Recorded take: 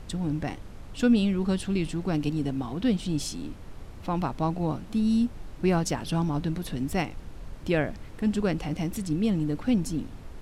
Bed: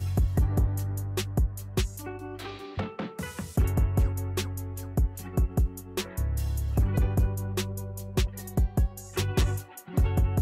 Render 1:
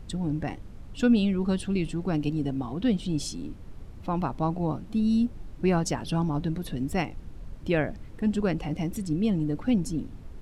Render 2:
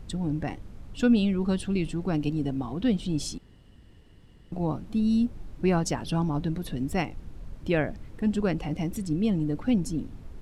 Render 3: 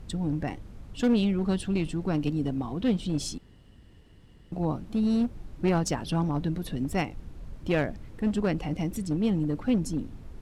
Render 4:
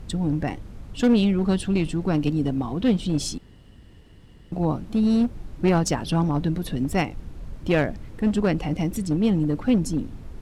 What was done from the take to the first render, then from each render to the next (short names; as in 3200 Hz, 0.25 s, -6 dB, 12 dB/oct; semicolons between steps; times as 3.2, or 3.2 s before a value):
denoiser 7 dB, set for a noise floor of -43 dBFS
3.38–4.52 room tone
one-sided clip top -24.5 dBFS, bottom -14 dBFS
gain +5 dB